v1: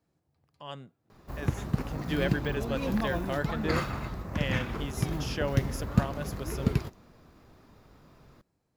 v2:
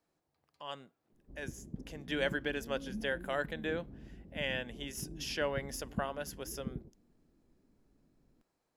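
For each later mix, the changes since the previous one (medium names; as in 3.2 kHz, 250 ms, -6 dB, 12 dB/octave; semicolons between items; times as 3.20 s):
background: add four-pole ladder low-pass 380 Hz, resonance 20%; master: add peaking EQ 100 Hz -14.5 dB 2.4 oct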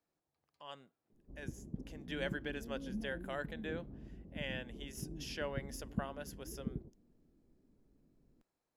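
speech -6.5 dB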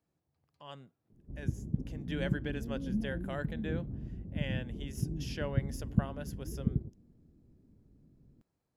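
master: add peaking EQ 100 Hz +14.5 dB 2.4 oct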